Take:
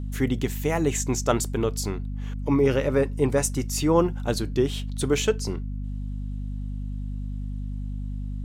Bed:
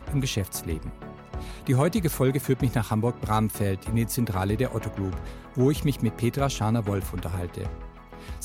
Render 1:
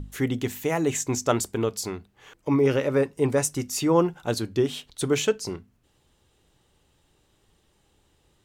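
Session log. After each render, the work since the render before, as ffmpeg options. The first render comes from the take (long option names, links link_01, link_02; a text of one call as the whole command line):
ffmpeg -i in.wav -af "bandreject=frequency=50:width_type=h:width=6,bandreject=frequency=100:width_type=h:width=6,bandreject=frequency=150:width_type=h:width=6,bandreject=frequency=200:width_type=h:width=6,bandreject=frequency=250:width_type=h:width=6" out.wav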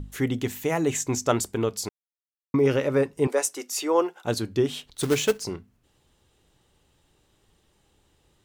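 ffmpeg -i in.wav -filter_complex "[0:a]asettb=1/sr,asplit=3[link_01][link_02][link_03];[link_01]atrim=end=3.274[link_04];[link_02]atrim=start=3.27:end=4.25,asetpts=PTS-STARTPTS,afade=type=in:duration=0.004:curve=qsin,afade=type=out:start_time=0.976:duration=0.004:curve=qsin,highpass=frequency=360:width=0.5412,highpass=frequency=360:width=1.3066[link_05];[link_03]atrim=start=4.246[link_06];[link_04][link_05]acrossfade=duration=0.004:curve1=hsin:curve2=qsin[link_07];[link_07][link_06]acrossfade=duration=0.004:curve1=qsin:curve2=hsin,asplit=3[link_08][link_09][link_10];[link_08]afade=type=out:start_time=4.92:duration=0.02[link_11];[link_09]acrusher=bits=3:mode=log:mix=0:aa=0.000001,afade=type=in:start_time=4.92:duration=0.02,afade=type=out:start_time=5.43:duration=0.02[link_12];[link_10]afade=type=in:start_time=5.43:duration=0.02[link_13];[link_11][link_12][link_13]amix=inputs=3:normalize=0,asplit=3[link_14][link_15][link_16];[link_14]atrim=end=1.89,asetpts=PTS-STARTPTS,afade=type=out:start_time=1.886:duration=0.004:curve=hsin[link_17];[link_15]atrim=start=1.89:end=2.54,asetpts=PTS-STARTPTS,volume=0[link_18];[link_16]atrim=start=2.54,asetpts=PTS-STARTPTS,afade=type=in:duration=0.004:curve=hsin[link_19];[link_17][link_18][link_19]concat=n=3:v=0:a=1" out.wav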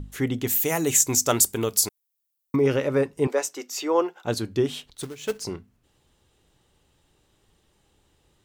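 ffmpeg -i in.wav -filter_complex "[0:a]asettb=1/sr,asplit=3[link_01][link_02][link_03];[link_01]atrim=end=0.474[link_04];[link_02]atrim=start=0.47:end=2.56,asetpts=PTS-STARTPTS,afade=type=in:duration=0.004:curve=qsin,afade=type=out:start_time=2.086:duration=0.004:curve=qsin,aemphasis=mode=production:type=75fm[link_05];[link_03]atrim=start=2.556[link_06];[link_04][link_05]acrossfade=duration=0.004:curve1=hsin:curve2=qsin[link_07];[link_07][link_06]acrossfade=duration=0.004:curve1=qsin:curve2=hsin,asettb=1/sr,asplit=3[link_08][link_09][link_10];[link_08]atrim=end=3.294[link_11];[link_09]atrim=start=3.29:end=4.32,asetpts=PTS-STARTPTS,afade=type=in:duration=0.004:curve=qsin,afade=type=out:start_time=1.026:duration=0.004:curve=qsin,equalizer=frequency=9900:width_type=o:width=0.38:gain=-14[link_12];[link_10]atrim=start=4.316[link_13];[link_11][link_12]acrossfade=duration=0.004:curve1=hsin:curve2=qsin[link_14];[link_14][link_13]acrossfade=duration=0.004:curve1=qsin:curve2=hsin,asplit=3[link_15][link_16][link_17];[link_15]atrim=end=5.13,asetpts=PTS-STARTPTS,afade=type=out:start_time=4.89:duration=0.24:silence=0.112202[link_18];[link_16]atrim=start=5.13:end=5.18,asetpts=PTS-STARTPTS,volume=-19dB[link_19];[link_17]atrim=start=5.18,asetpts=PTS-STARTPTS,afade=type=in:duration=0.24:silence=0.112202[link_20];[link_18][link_19][link_20]concat=n=3:v=0:a=1" out.wav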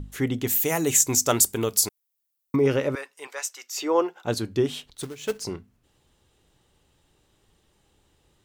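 ffmpeg -i in.wav -filter_complex "[0:a]asettb=1/sr,asplit=3[link_01][link_02][link_03];[link_01]atrim=end=2.954[link_04];[link_02]atrim=start=2.95:end=3.76,asetpts=PTS-STARTPTS,afade=type=in:duration=0.004:curve=qsin,afade=type=out:start_time=0.806:duration=0.004:curve=qsin,highpass=1300[link_05];[link_03]atrim=start=3.756[link_06];[link_04][link_05]acrossfade=duration=0.004:curve1=hsin:curve2=qsin[link_07];[link_07][link_06]acrossfade=duration=0.004:curve1=qsin:curve2=hsin" out.wav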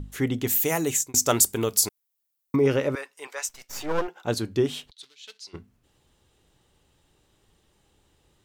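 ffmpeg -i in.wav -filter_complex "[0:a]asettb=1/sr,asplit=3[link_01][link_02][link_03];[link_01]atrim=end=3.494[link_04];[link_02]atrim=start=3.49:end=4.08,asetpts=PTS-STARTPTS,afade=type=in:duration=0.004:curve=qsin,afade=type=out:start_time=0.586:duration=0.004:curve=qsin,aeval=exprs='max(val(0),0)':channel_layout=same[link_05];[link_03]atrim=start=4.076[link_06];[link_04][link_05]acrossfade=duration=0.004:curve1=hsin:curve2=qsin[link_07];[link_07][link_06]acrossfade=duration=0.004:curve1=qsin:curve2=hsin,asplit=3[link_08][link_09][link_10];[link_08]afade=type=out:start_time=4.9:duration=0.02[link_11];[link_09]bandpass=frequency=3900:width_type=q:width=2.6,afade=type=in:start_time=4.9:duration=0.02,afade=type=out:start_time=5.53:duration=0.02[link_12];[link_10]afade=type=in:start_time=5.53:duration=0.02[link_13];[link_11][link_12][link_13]amix=inputs=3:normalize=0,asplit=2[link_14][link_15];[link_14]atrim=end=1.14,asetpts=PTS-STARTPTS,afade=type=out:start_time=0.67:duration=0.47:curve=qsin[link_16];[link_15]atrim=start=1.14,asetpts=PTS-STARTPTS,afade=type=in:duration=0.004:curve=hsin[link_17];[link_16][link_17]concat=n=2:v=0:a=1" out.wav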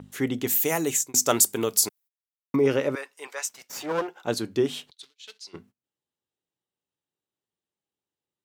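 ffmpeg -i in.wav -af "agate=range=-26dB:threshold=-51dB:ratio=16:detection=peak,highpass=160" out.wav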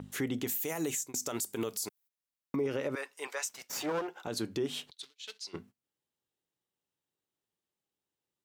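ffmpeg -i in.wav -af "acompressor=threshold=-29dB:ratio=3,alimiter=limit=-24dB:level=0:latency=1:release=48" out.wav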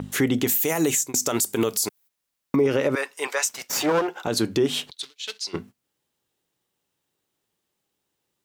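ffmpeg -i in.wav -af "volume=12dB" out.wav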